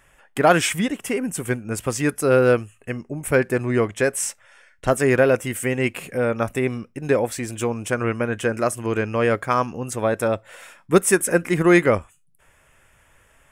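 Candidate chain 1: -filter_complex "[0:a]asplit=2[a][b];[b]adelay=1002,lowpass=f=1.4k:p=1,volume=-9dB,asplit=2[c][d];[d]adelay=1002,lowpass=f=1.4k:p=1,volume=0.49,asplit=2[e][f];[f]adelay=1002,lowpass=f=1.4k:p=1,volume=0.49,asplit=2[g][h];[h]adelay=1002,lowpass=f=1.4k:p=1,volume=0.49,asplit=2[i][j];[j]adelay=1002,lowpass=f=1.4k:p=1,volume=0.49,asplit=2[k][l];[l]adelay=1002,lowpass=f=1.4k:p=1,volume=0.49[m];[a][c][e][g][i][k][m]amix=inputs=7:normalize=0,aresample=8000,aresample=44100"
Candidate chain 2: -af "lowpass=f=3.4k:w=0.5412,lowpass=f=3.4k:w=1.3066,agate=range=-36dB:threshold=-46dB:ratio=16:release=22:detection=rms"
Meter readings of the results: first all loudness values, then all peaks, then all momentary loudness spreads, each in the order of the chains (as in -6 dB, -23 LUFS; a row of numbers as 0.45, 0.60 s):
-21.5, -21.5 LUFS; -3.5, -3.5 dBFS; 12, 10 LU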